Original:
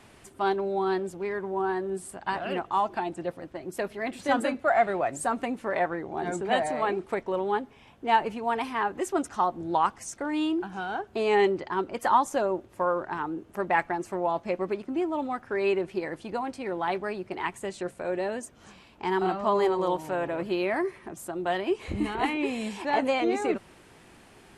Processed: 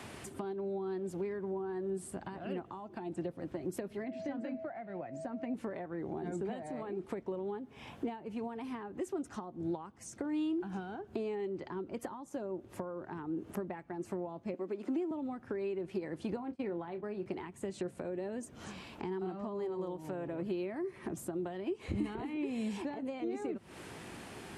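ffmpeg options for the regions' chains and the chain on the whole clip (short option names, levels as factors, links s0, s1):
-filter_complex "[0:a]asettb=1/sr,asplit=3[s0][s1][s2];[s0]atrim=end=4.044[s3];[s1]atrim=start=4.04:end=5.54,asetpts=PTS-STARTPTS,afade=t=in:d=0.004:c=qsin,afade=t=out:st=1.496:d=0.004:c=qsin,highpass=110,equalizer=f=410:t=q:w=4:g=-8,equalizer=f=1200:t=q:w=4:g=-5,equalizer=f=2000:t=q:w=4:g=3,equalizer=f=3600:t=q:w=4:g=-7,lowpass=f=5500:w=0.5412,lowpass=f=5500:w=1.3066,aeval=exprs='val(0)+0.0224*sin(2*PI*650*n/s)':c=same[s4];[s2]atrim=start=5.536[s5];[s3][s4]acrossfade=d=0.004:c1=hsin:c2=qsin[s6];[s6][s5]acrossfade=d=0.004:c1=qsin:c2=hsin,asettb=1/sr,asplit=3[s7][s8][s9];[s7]atrim=end=14.544[s10];[s8]atrim=start=14.54:end=15.11,asetpts=PTS-STARTPTS,afade=t=in:d=0.004:c=qsin,afade=t=out:st=0.566:d=0.004:c=qsin,highpass=f=220:w=0.5412,highpass=f=220:w=1.3066,equalizer=f=7100:w=7.2:g=4,acompressor=mode=upward:threshold=0.0282:ratio=2.5:attack=3.2:release=140:knee=2.83:detection=peak[s11];[s9]atrim=start=15.106[s12];[s10][s11]acrossfade=d=0.004:c1=hsin:c2=qsin[s13];[s13][s12]acrossfade=d=0.004:c1=qsin:c2=hsin,asettb=1/sr,asplit=3[s14][s15][s16];[s14]atrim=end=16.364[s17];[s15]atrim=start=16.36:end=17.26,asetpts=PTS-STARTPTS,afade=t=in:d=0.004:c=qsin,afade=t=out:st=0.896:d=0.004:c=qsin,agate=range=0.0562:threshold=0.0112:ratio=16:release=100:detection=peak,bass=f=250:g=-2,treble=f=4000:g=-6,asplit=2[s18][s19];[s19]adelay=29,volume=0.251[s20];[s18][s20]amix=inputs=2:normalize=0,atrim=end_sample=39690[s21];[s16]atrim=start=17.256[s22];[s17][s21]acrossfade=d=0.004:c1=hsin:c2=qsin[s23];[s23][s22]acrossfade=d=0.004:c1=qsin:c2=hsin,acompressor=threshold=0.0126:ratio=6,highpass=70,acrossover=split=400[s24][s25];[s25]acompressor=threshold=0.002:ratio=6[s26];[s24][s26]amix=inputs=2:normalize=0,volume=2.24"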